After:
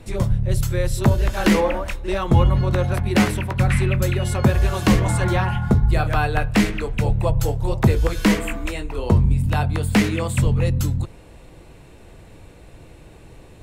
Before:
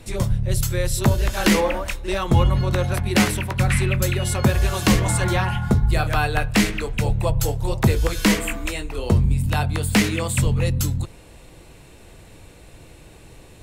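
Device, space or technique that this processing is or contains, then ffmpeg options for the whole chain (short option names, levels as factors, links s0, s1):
behind a face mask: -filter_complex "[0:a]highshelf=f=2600:g=-8,asettb=1/sr,asplit=3[s0][s1][s2];[s0]atrim=end=8.904[s3];[s1]atrim=start=8.9:end=9.3,asetpts=PTS-STARTPTS,afade=t=in:d=0.004:c=qsin,afade=t=out:st=0.396:d=0.004:c=qsin,equalizer=f=970:w=6.4:g=6.5[s4];[s2]atrim=start=9.296[s5];[s3][s4]acrossfade=d=0.004:c1=hsin:c2=qsin[s6];[s6][s5]acrossfade=d=0.004:c1=qsin:c2=hsin,volume=1.19"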